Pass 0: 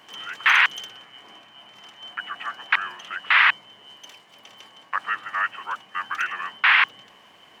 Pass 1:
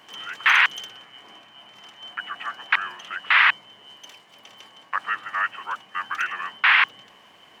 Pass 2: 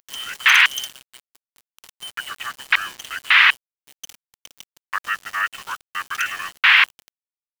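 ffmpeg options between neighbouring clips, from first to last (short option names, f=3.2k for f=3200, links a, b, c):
-af anull
-af "crystalizer=i=9.5:c=0,aeval=exprs='val(0)*gte(abs(val(0)),0.0473)':c=same,volume=-6dB"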